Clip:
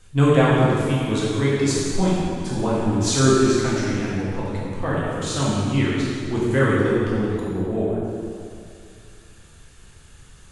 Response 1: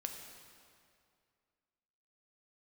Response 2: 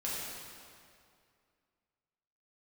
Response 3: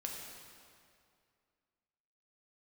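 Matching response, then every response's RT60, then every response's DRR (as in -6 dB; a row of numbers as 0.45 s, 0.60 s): 2; 2.3 s, 2.3 s, 2.3 s; 3.0 dB, -7.5 dB, -1.0 dB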